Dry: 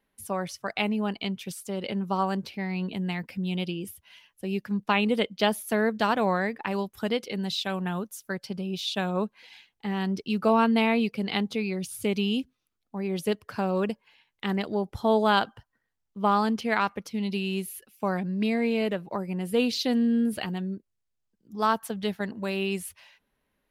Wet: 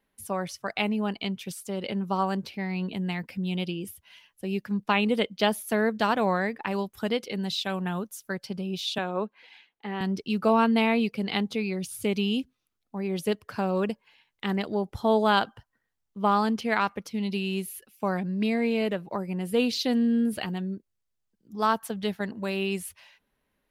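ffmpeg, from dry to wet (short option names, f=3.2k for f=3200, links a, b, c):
-filter_complex "[0:a]asettb=1/sr,asplit=3[a][b][c];[a]atrim=end=8.984[d];[b]atrim=start=8.98:end=10.01,asetpts=PTS-STARTPTS,afade=t=in:d=0.004:c=qsin,afade=t=out:st=1.026:d=0.004:c=qsin,acrossover=split=210 3600:gain=0.141 1 0.251[e][f][g];[e][f][g]amix=inputs=3:normalize=0[h];[c]atrim=start=10.006[i];[d][h]acrossfade=d=0.004:c1=hsin:c2=qsin[j];[j][i]acrossfade=d=0.004:c1=qsin:c2=hsin"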